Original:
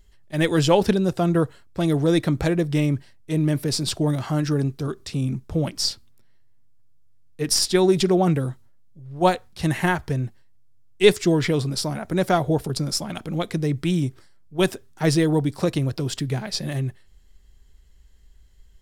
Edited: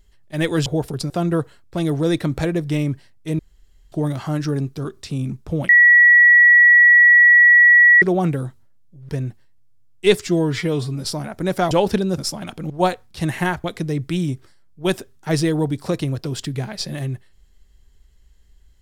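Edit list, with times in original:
0.66–1.13 swap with 12.42–12.86
3.42–3.95 room tone
5.72–8.05 bleep 1930 Hz -7 dBFS
9.12–10.06 move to 13.38
11.24–11.76 stretch 1.5×

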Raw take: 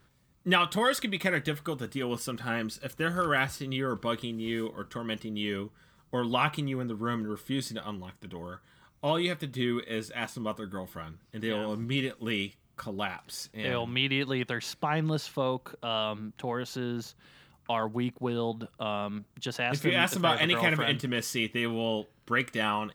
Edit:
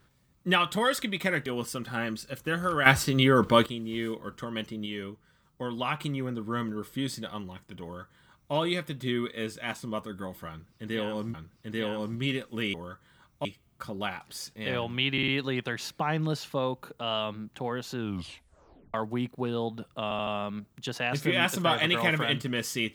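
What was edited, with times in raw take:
1.46–1.99 cut
3.39–4.19 gain +10 dB
5.39–6.53 gain -4 dB
8.36–9.07 copy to 12.43
11.03–11.87 loop, 2 plays
14.11 stutter 0.05 s, 4 plays
16.78 tape stop 0.99 s
18.86 stutter 0.08 s, 4 plays

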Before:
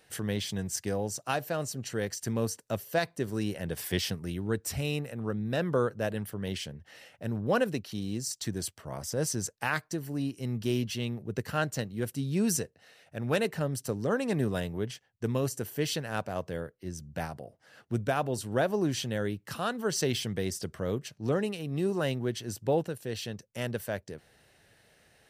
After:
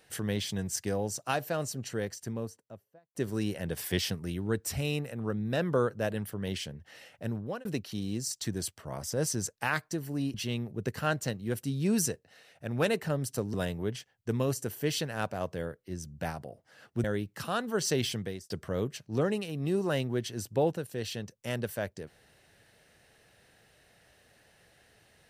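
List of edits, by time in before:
1.65–3.15 studio fade out
7.26–7.65 fade out
10.34–10.85 cut
14.05–14.49 cut
17.99–19.15 cut
20.24–20.61 fade out

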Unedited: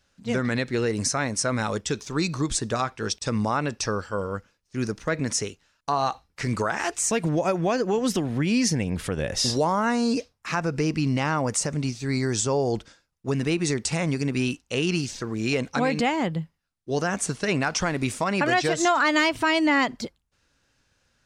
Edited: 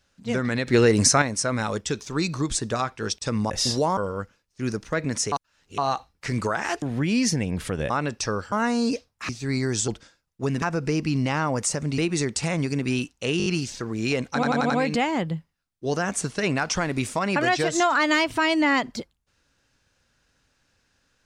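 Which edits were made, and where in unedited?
0.67–1.22 gain +7.5 dB
3.5–4.12 swap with 9.29–9.76
5.47–5.93 reverse
6.97–8.21 cut
10.53–11.89 move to 13.47
12.48–12.73 cut
14.87 stutter 0.02 s, 5 plays
15.75 stutter 0.09 s, 5 plays

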